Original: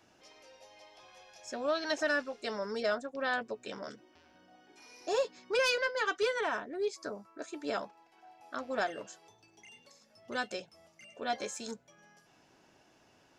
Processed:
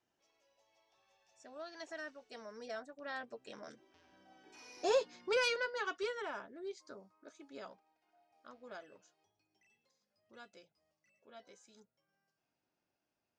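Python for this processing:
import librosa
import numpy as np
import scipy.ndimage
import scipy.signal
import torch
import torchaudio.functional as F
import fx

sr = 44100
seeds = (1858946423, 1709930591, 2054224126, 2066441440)

y = fx.doppler_pass(x, sr, speed_mps=18, closest_m=9.5, pass_at_s=4.79)
y = scipy.signal.sosfilt(scipy.signal.butter(2, 9300.0, 'lowpass', fs=sr, output='sos'), y)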